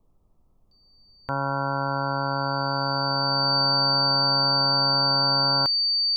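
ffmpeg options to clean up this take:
ffmpeg -i in.wav -af "bandreject=frequency=4600:width=30,agate=range=-21dB:threshold=-51dB" out.wav

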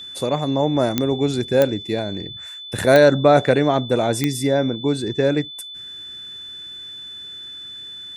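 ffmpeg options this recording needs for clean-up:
ffmpeg -i in.wav -af "adeclick=threshold=4,bandreject=frequency=3500:width=30" out.wav

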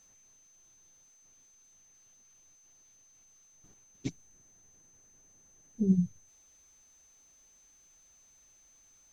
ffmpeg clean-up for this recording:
ffmpeg -i in.wav -af "bandreject=frequency=6200:width=30" out.wav

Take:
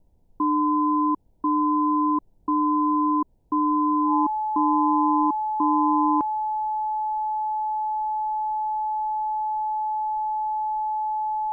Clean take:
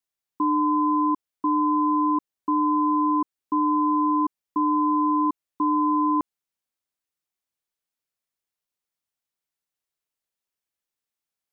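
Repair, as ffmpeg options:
ffmpeg -i in.wav -af "bandreject=frequency=860:width=30,agate=range=-21dB:threshold=-44dB" out.wav

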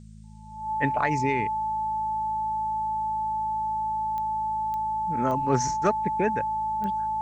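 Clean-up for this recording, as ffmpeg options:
ffmpeg -i in.wav -af "adeclick=threshold=4,bandreject=frequency=53.6:width_type=h:width=4,bandreject=frequency=107.2:width_type=h:width=4,bandreject=frequency=160.8:width_type=h:width=4,bandreject=frequency=214.4:width_type=h:width=4,bandreject=frequency=870:width=30,agate=range=-21dB:threshold=-20dB" out.wav

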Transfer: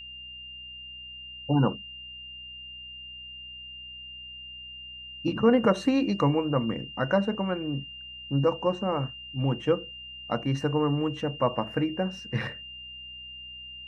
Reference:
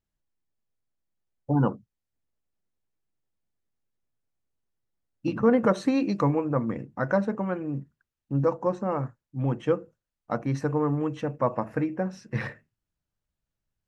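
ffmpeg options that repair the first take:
ffmpeg -i in.wav -af "bandreject=frequency=62.8:width_type=h:width=4,bandreject=frequency=125.6:width_type=h:width=4,bandreject=frequency=188.4:width_type=h:width=4,bandreject=frequency=251.2:width_type=h:width=4,bandreject=frequency=2800:width=30" out.wav

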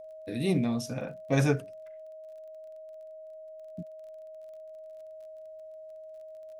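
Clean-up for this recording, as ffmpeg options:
ffmpeg -i in.wav -af "adeclick=threshold=4,bandreject=frequency=630:width=30" out.wav

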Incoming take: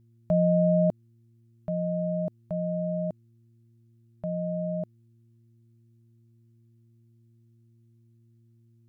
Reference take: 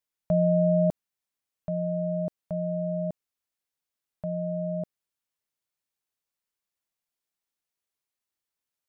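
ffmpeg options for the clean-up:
ffmpeg -i in.wav -af "bandreject=frequency=115.3:width_type=h:width=4,bandreject=frequency=230.6:width_type=h:width=4,bandreject=frequency=345.9:width_type=h:width=4" out.wav

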